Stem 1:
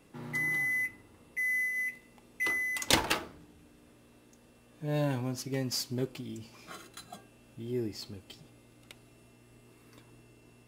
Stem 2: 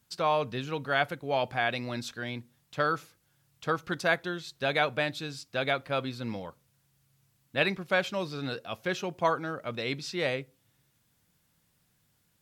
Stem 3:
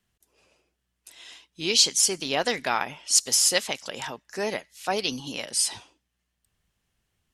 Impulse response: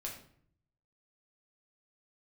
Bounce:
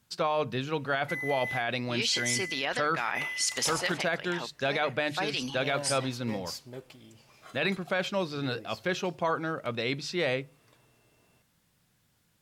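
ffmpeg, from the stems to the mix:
-filter_complex "[0:a]lowshelf=f=420:t=q:w=1.5:g=-7,adelay=750,volume=-4.5dB[a];[1:a]bandreject=f=50:t=h:w=6,bandreject=f=100:t=h:w=6,bandreject=f=150:t=h:w=6,volume=2.5dB,asplit=2[b][c];[2:a]equalizer=f=1.9k:t=o:w=1.5:g=9.5,adelay=300,volume=-1dB[d];[c]apad=whole_len=336755[e];[d][e]sidechaincompress=threshold=-38dB:ratio=8:attack=16:release=127[f];[a][b][f]amix=inputs=3:normalize=0,highshelf=f=10k:g=-6,alimiter=limit=-18.5dB:level=0:latency=1:release=22"

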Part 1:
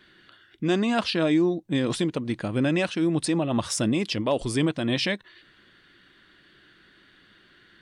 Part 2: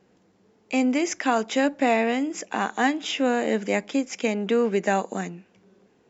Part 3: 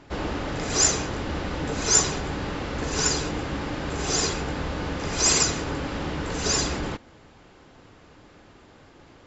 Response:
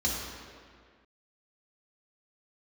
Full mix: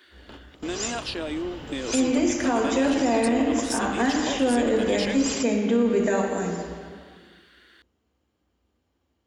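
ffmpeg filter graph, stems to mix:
-filter_complex "[0:a]highpass=f=290:w=0.5412,highpass=f=290:w=1.3066,highshelf=f=6.2k:g=8,acompressor=threshold=-30dB:ratio=4,volume=0.5dB,asplit=2[a][b];[1:a]adelay=1200,volume=-3.5dB,asplit=2[c][d];[d]volume=-7dB[e];[2:a]equalizer=f=3k:w=6.4:g=10,bandreject=f=6.1k:w=22,acrusher=bits=9:mix=0:aa=0.000001,volume=-10.5dB,asplit=2[f][g];[g]volume=-24dB[h];[b]apad=whole_len=408379[i];[f][i]sidechaingate=range=-33dB:threshold=-51dB:ratio=16:detection=peak[j];[3:a]atrim=start_sample=2205[k];[e][h]amix=inputs=2:normalize=0[l];[l][k]afir=irnorm=-1:irlink=0[m];[a][c][j][m]amix=inputs=4:normalize=0,alimiter=limit=-13dB:level=0:latency=1:release=51"

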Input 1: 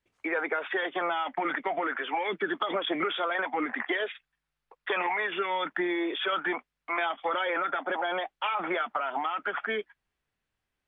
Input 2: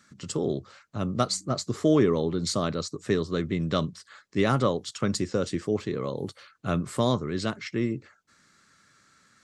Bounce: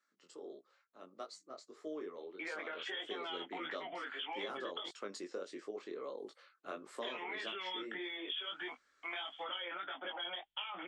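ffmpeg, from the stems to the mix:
-filter_complex "[0:a]lowpass=f=3.2k:t=q:w=8,adelay=2150,volume=-11dB,asplit=3[a][b][c];[a]atrim=end=4.89,asetpts=PTS-STARTPTS,afade=t=out:st=4.886:d=0.004:c=hsin[d];[b]atrim=start=4.89:end=6.76,asetpts=PTS-STARTPTS,volume=0[e];[c]atrim=start=6.76,asetpts=PTS-STARTPTS,afade=t=in:d=0.004:c=hsin[f];[d][e][f]concat=n=3:v=0:a=1[g];[1:a]highpass=f=340:w=0.5412,highpass=f=340:w=1.3066,aemphasis=mode=reproduction:type=cd,volume=-8dB,afade=t=in:st=2.74:d=0.53:silence=0.375837[h];[g][h]amix=inputs=2:normalize=0,flanger=delay=19:depth=4.1:speed=1.6,acompressor=threshold=-38dB:ratio=10"

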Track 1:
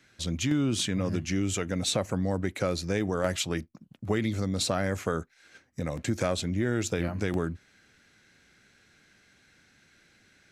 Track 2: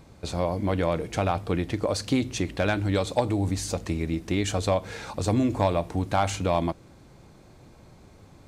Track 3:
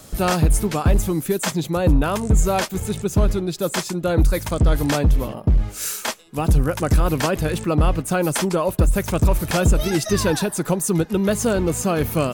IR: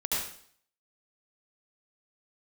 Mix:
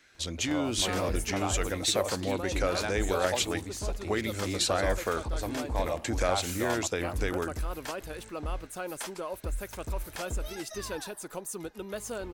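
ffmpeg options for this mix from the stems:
-filter_complex "[0:a]volume=1.5dB[a];[1:a]adelay=150,volume=-7dB[b];[2:a]adelay=650,volume=-14dB[c];[a][b][c]amix=inputs=3:normalize=0,equalizer=f=150:w=0.97:g=-14"

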